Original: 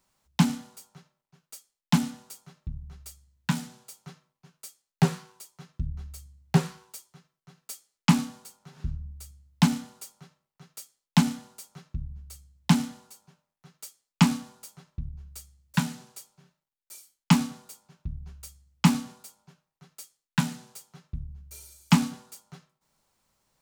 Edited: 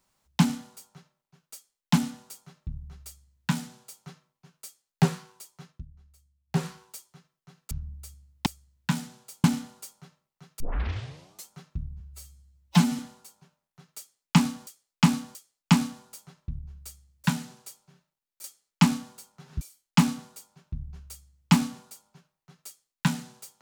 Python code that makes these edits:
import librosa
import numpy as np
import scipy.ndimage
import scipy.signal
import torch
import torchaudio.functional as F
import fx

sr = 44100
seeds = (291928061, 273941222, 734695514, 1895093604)

y = fx.edit(x, sr, fx.duplicate(start_s=3.06, length_s=0.98, to_s=9.63),
    fx.fade_down_up(start_s=5.66, length_s=1.0, db=-17.5, fade_s=0.19),
    fx.move(start_s=7.71, length_s=1.17, to_s=16.94),
    fx.tape_start(start_s=10.79, length_s=0.89),
    fx.stretch_span(start_s=12.19, length_s=0.66, factor=1.5),
    fx.repeat(start_s=13.85, length_s=0.68, count=3), tone=tone)